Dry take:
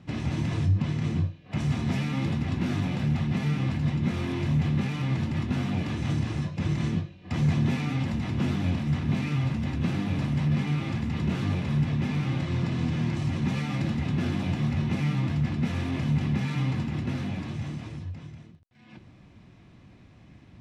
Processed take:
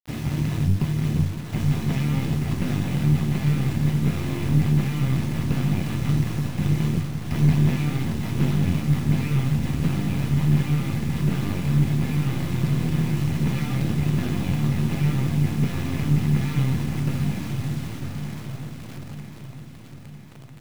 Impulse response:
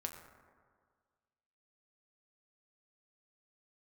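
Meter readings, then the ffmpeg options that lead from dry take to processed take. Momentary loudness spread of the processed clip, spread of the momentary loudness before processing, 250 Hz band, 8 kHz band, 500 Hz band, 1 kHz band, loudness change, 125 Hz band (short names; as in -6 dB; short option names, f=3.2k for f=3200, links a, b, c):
11 LU, 5 LU, +3.5 dB, n/a, +3.5 dB, +2.0 dB, +4.5 dB, +5.0 dB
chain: -filter_complex "[0:a]aeval=exprs='0.178*(cos(1*acos(clip(val(0)/0.178,-1,1)))-cos(1*PI/2))+0.0708*(cos(2*acos(clip(val(0)/0.178,-1,1)))-cos(2*PI/2))':c=same,asplit=2[a][b];[b]adelay=560,lowpass=f=1.1k:p=1,volume=-12dB,asplit=2[c][d];[d]adelay=560,lowpass=f=1.1k:p=1,volume=0.5,asplit=2[e][f];[f]adelay=560,lowpass=f=1.1k:p=1,volume=0.5,asplit=2[g][h];[h]adelay=560,lowpass=f=1.1k:p=1,volume=0.5,asplit=2[i][j];[j]adelay=560,lowpass=f=1.1k:p=1,volume=0.5[k];[c][e][g][i][k]amix=inputs=5:normalize=0[l];[a][l]amix=inputs=2:normalize=0,adynamicequalizer=threshold=0.01:dfrequency=150:dqfactor=3.7:tfrequency=150:tqfactor=3.7:attack=5:release=100:ratio=0.375:range=3:mode=boostabove:tftype=bell,acrusher=bits=6:mix=0:aa=0.000001,asplit=2[m][n];[n]aecho=0:1:952|1904|2856|3808|4760|5712:0.355|0.195|0.107|0.059|0.0325|0.0179[o];[m][o]amix=inputs=2:normalize=0"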